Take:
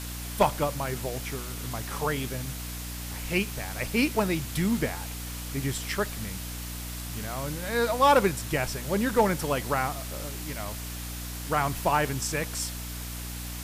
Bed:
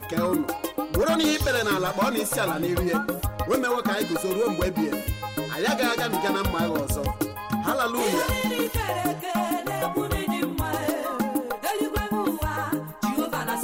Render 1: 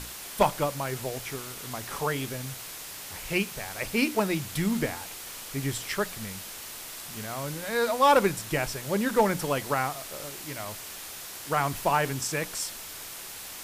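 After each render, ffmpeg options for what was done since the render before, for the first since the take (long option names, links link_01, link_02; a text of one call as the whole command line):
ffmpeg -i in.wav -af "bandreject=frequency=60:width_type=h:width=6,bandreject=frequency=120:width_type=h:width=6,bandreject=frequency=180:width_type=h:width=6,bandreject=frequency=240:width_type=h:width=6,bandreject=frequency=300:width_type=h:width=6" out.wav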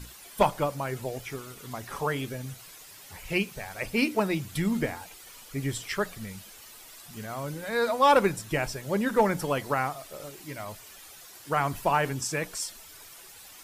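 ffmpeg -i in.wav -af "afftdn=noise_reduction=11:noise_floor=-41" out.wav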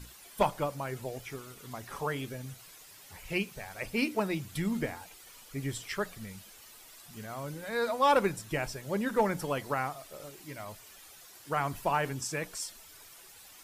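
ffmpeg -i in.wav -af "volume=-4.5dB" out.wav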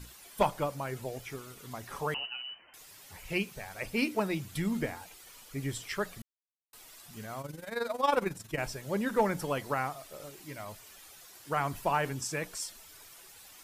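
ffmpeg -i in.wav -filter_complex "[0:a]asettb=1/sr,asplit=3[link_01][link_02][link_03];[link_01]atrim=end=2.144[link_04];[link_02]atrim=start=2.14:end=2.74,asetpts=PTS-STARTPTS,afade=type=in:duration=0.004:curve=qsin,afade=type=out:start_time=0.596:duration=0.004:curve=qsin,lowpass=frequency=2600:width_type=q:width=0.5098,lowpass=frequency=2600:width_type=q:width=0.6013,lowpass=frequency=2600:width_type=q:width=0.9,lowpass=frequency=2600:width_type=q:width=2.563,afreqshift=-3100[link_05];[link_03]atrim=start=2.736[link_06];[link_04][link_05]acrossfade=duration=0.004:curve1=hsin:curve2=qsin[link_07];[link_07][link_06]acrossfade=duration=0.004:curve1=qsin:curve2=hsin,asettb=1/sr,asplit=3[link_08][link_09][link_10];[link_08]atrim=end=7.414[link_11];[link_09]atrim=start=7.41:end=8.58,asetpts=PTS-STARTPTS,afade=type=in:duration=0.004:curve=qsin,afade=type=out:start_time=1.166:duration=0.004:curve=qsin,tremolo=f=22:d=0.75[link_12];[link_10]atrim=start=8.576[link_13];[link_11][link_12]acrossfade=duration=0.004:curve1=hsin:curve2=qsin[link_14];[link_14][link_13]acrossfade=duration=0.004:curve1=qsin:curve2=hsin,asplit=3[link_15][link_16][link_17];[link_15]atrim=end=6.22,asetpts=PTS-STARTPTS,afade=type=out:start_time=6.216:duration=0.004:curve=hsin[link_18];[link_16]atrim=start=6.22:end=6.73,asetpts=PTS-STARTPTS,volume=0[link_19];[link_17]atrim=start=6.73,asetpts=PTS-STARTPTS,afade=type=in:duration=0.004:curve=hsin[link_20];[link_18][link_19][link_20]concat=n=3:v=0:a=1" out.wav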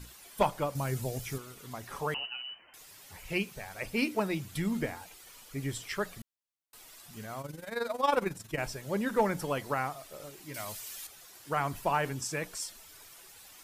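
ffmpeg -i in.wav -filter_complex "[0:a]asettb=1/sr,asplit=3[link_01][link_02][link_03];[link_01]atrim=end=0.754[link_04];[link_02]atrim=start=0.75:end=1.38,asetpts=PTS-STARTPTS,afade=type=in:duration=0.004:curve=qsin,afade=type=out:start_time=0.626:duration=0.004:curve=qsin,bass=frequency=250:gain=9,treble=frequency=4000:gain=8[link_05];[link_03]atrim=start=1.376[link_06];[link_04][link_05]acrossfade=duration=0.004:curve1=hsin:curve2=qsin[link_07];[link_07][link_06]acrossfade=duration=0.004:curve1=qsin:curve2=hsin,asettb=1/sr,asplit=3[link_08][link_09][link_10];[link_08]atrim=end=10.544[link_11];[link_09]atrim=start=10.54:end=11.07,asetpts=PTS-STARTPTS,afade=type=in:duration=0.004:curve=qsin,afade=type=out:start_time=0.526:duration=0.004:curve=qsin,highshelf=frequency=2500:gain=11.5[link_12];[link_10]atrim=start=11.066[link_13];[link_11][link_12]acrossfade=duration=0.004:curve1=hsin:curve2=qsin[link_14];[link_14][link_13]acrossfade=duration=0.004:curve1=qsin:curve2=hsin" out.wav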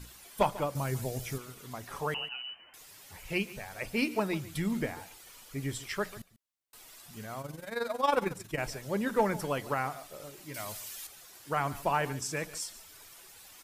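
ffmpeg -i in.wav -af "aecho=1:1:144:0.133" out.wav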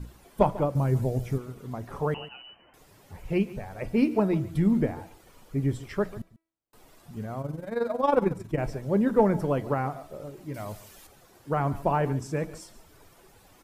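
ffmpeg -i in.wav -af "tiltshelf=frequency=1200:gain=10,bandreject=frequency=326.6:width_type=h:width=4,bandreject=frequency=653.2:width_type=h:width=4,bandreject=frequency=979.8:width_type=h:width=4,bandreject=frequency=1306.4:width_type=h:width=4,bandreject=frequency=1633:width_type=h:width=4,bandreject=frequency=1959.6:width_type=h:width=4,bandreject=frequency=2286.2:width_type=h:width=4,bandreject=frequency=2612.8:width_type=h:width=4,bandreject=frequency=2939.4:width_type=h:width=4,bandreject=frequency=3266:width_type=h:width=4,bandreject=frequency=3592.6:width_type=h:width=4,bandreject=frequency=3919.2:width_type=h:width=4,bandreject=frequency=4245.8:width_type=h:width=4,bandreject=frequency=4572.4:width_type=h:width=4,bandreject=frequency=4899:width_type=h:width=4,bandreject=frequency=5225.6:width_type=h:width=4,bandreject=frequency=5552.2:width_type=h:width=4,bandreject=frequency=5878.8:width_type=h:width=4,bandreject=frequency=6205.4:width_type=h:width=4,bandreject=frequency=6532:width_type=h:width=4,bandreject=frequency=6858.6:width_type=h:width=4,bandreject=frequency=7185.2:width_type=h:width=4,bandreject=frequency=7511.8:width_type=h:width=4,bandreject=frequency=7838.4:width_type=h:width=4,bandreject=frequency=8165:width_type=h:width=4,bandreject=frequency=8491.6:width_type=h:width=4,bandreject=frequency=8818.2:width_type=h:width=4,bandreject=frequency=9144.8:width_type=h:width=4,bandreject=frequency=9471.4:width_type=h:width=4,bandreject=frequency=9798:width_type=h:width=4,bandreject=frequency=10124.6:width_type=h:width=4,bandreject=frequency=10451.2:width_type=h:width=4,bandreject=frequency=10777.8:width_type=h:width=4" out.wav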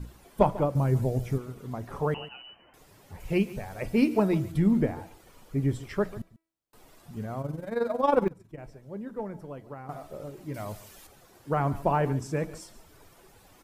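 ffmpeg -i in.wav -filter_complex "[0:a]asettb=1/sr,asplit=3[link_01][link_02][link_03];[link_01]atrim=end=3.204[link_04];[link_02]atrim=start=3.2:end=4.52,asetpts=PTS-STARTPTS,afade=type=in:duration=0.004:curve=qsin,afade=type=out:start_time=1.316:duration=0.004:curve=qsin,highshelf=frequency=3000:gain=6.5[link_05];[link_03]atrim=start=4.516[link_06];[link_04][link_05]acrossfade=duration=0.004:curve1=hsin:curve2=qsin[link_07];[link_07][link_06]acrossfade=duration=0.004:curve1=qsin:curve2=hsin,asplit=3[link_08][link_09][link_10];[link_08]atrim=end=8.28,asetpts=PTS-STARTPTS,afade=type=out:start_time=8.11:duration=0.17:curve=log:silence=0.188365[link_11];[link_09]atrim=start=8.28:end=9.89,asetpts=PTS-STARTPTS,volume=-14.5dB[link_12];[link_10]atrim=start=9.89,asetpts=PTS-STARTPTS,afade=type=in:duration=0.17:curve=log:silence=0.188365[link_13];[link_11][link_12][link_13]concat=n=3:v=0:a=1" out.wav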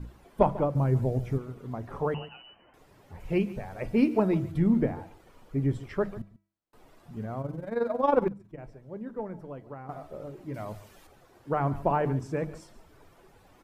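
ffmpeg -i in.wav -af "highshelf=frequency=3800:gain=-11.5,bandreject=frequency=50:width_type=h:width=6,bandreject=frequency=100:width_type=h:width=6,bandreject=frequency=150:width_type=h:width=6,bandreject=frequency=200:width_type=h:width=6" out.wav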